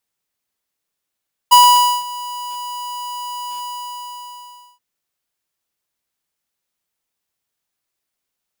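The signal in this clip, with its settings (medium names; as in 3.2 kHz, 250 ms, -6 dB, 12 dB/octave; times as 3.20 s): ADSR square 980 Hz, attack 17 ms, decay 500 ms, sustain -21 dB, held 2.10 s, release 1180 ms -6.5 dBFS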